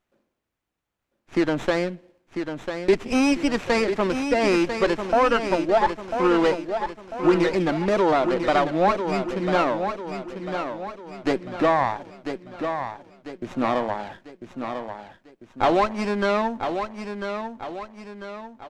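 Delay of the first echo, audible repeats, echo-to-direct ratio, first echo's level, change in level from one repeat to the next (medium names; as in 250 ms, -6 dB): 996 ms, 4, -6.5 dB, -7.5 dB, -7.0 dB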